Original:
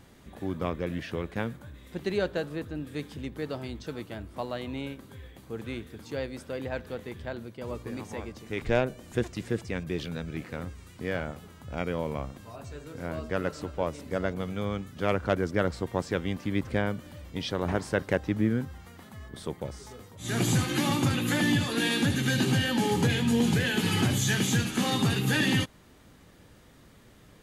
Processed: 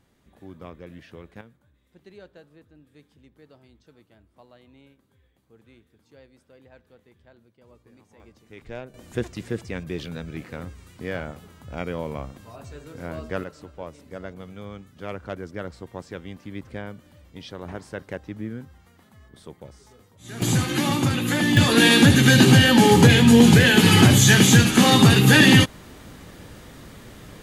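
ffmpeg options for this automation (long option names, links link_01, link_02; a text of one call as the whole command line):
ffmpeg -i in.wav -af "asetnsamples=nb_out_samples=441:pad=0,asendcmd='1.41 volume volume -18dB;8.2 volume volume -11.5dB;8.94 volume volume 1dB;13.44 volume volume -7dB;20.42 volume volume 4dB;21.57 volume volume 12dB',volume=-10dB" out.wav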